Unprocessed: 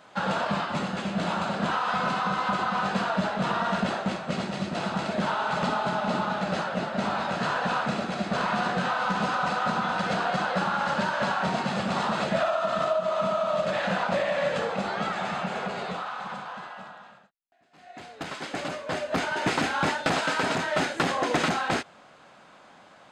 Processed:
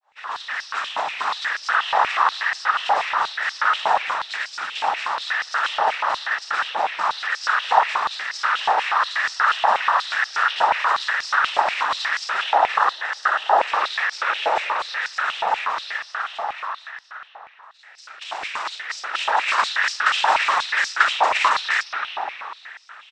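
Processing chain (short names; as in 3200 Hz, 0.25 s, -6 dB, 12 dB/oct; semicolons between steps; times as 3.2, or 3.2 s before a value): opening faded in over 0.73 s; harmoniser -7 st -3 dB; spring tank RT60 3.3 s, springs 49/57 ms, chirp 65 ms, DRR 2 dB; noise vocoder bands 12; stepped high-pass 8.3 Hz 820–5100 Hz; gain +1.5 dB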